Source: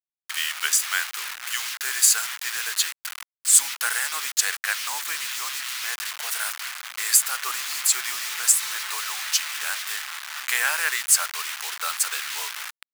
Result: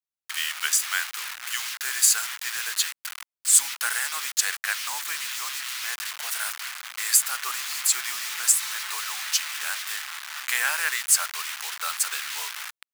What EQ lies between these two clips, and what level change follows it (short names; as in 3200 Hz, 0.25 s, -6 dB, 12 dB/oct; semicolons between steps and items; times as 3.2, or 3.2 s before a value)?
bell 430 Hz -3.5 dB 0.9 oct; -1.5 dB